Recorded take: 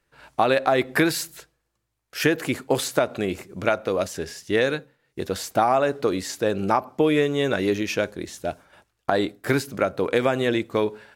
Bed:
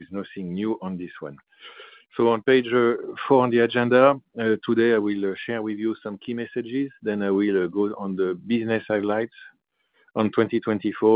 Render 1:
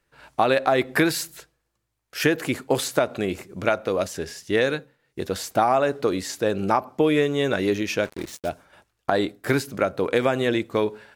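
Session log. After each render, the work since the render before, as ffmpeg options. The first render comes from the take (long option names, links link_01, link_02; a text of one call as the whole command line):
ffmpeg -i in.wav -filter_complex "[0:a]asplit=3[link_01][link_02][link_03];[link_01]afade=type=out:start_time=8.04:duration=0.02[link_04];[link_02]acrusher=bits=5:mix=0:aa=0.5,afade=type=in:start_time=8.04:duration=0.02,afade=type=out:start_time=8.48:duration=0.02[link_05];[link_03]afade=type=in:start_time=8.48:duration=0.02[link_06];[link_04][link_05][link_06]amix=inputs=3:normalize=0" out.wav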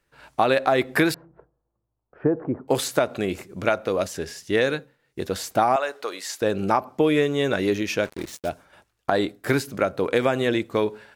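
ffmpeg -i in.wav -filter_complex "[0:a]asettb=1/sr,asplit=3[link_01][link_02][link_03];[link_01]atrim=end=1.144[link_04];[link_02]atrim=start=1.14:end=2.68,asetpts=PTS-STARTPTS,afade=type=in:duration=0.004:curve=qsin,afade=type=out:start_time=1.536:duration=0.004:curve=qsin,lowpass=frequency=1000:width=0.5412,lowpass=frequency=1000:width=1.3066[link_05];[link_03]atrim=start=2.676[link_06];[link_04][link_05]acrossfade=duration=0.004:curve1=hsin:curve2=qsin[link_07];[link_07][link_06]acrossfade=duration=0.004:curve1=qsin:curve2=hsin,asettb=1/sr,asplit=3[link_08][link_09][link_10];[link_08]atrim=end=5.764[link_11];[link_09]atrim=start=5.76:end=6.42,asetpts=PTS-STARTPTS,afade=type=in:duration=0.004:curve=qsin,afade=type=out:start_time=0.656:duration=0.004:curve=qsin,highpass=730[link_12];[link_10]atrim=start=6.416[link_13];[link_11][link_12]acrossfade=duration=0.004:curve1=hsin:curve2=qsin[link_14];[link_14][link_13]acrossfade=duration=0.004:curve1=qsin:curve2=hsin" out.wav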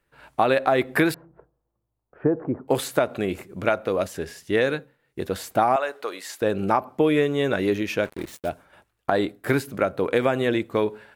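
ffmpeg -i in.wav -af "equalizer=frequency=5700:width_type=o:width=1.1:gain=-7" out.wav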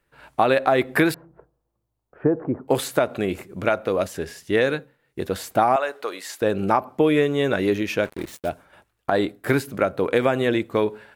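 ffmpeg -i in.wav -af "volume=1.5dB,alimiter=limit=-3dB:level=0:latency=1" out.wav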